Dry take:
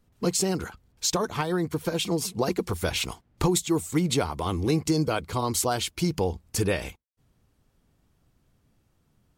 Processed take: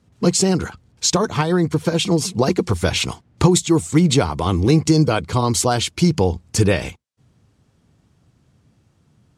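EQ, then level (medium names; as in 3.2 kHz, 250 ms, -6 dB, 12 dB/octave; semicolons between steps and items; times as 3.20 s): Chebyshev band-pass 110–7700 Hz, order 2; bass shelf 140 Hz +7.5 dB; +8.0 dB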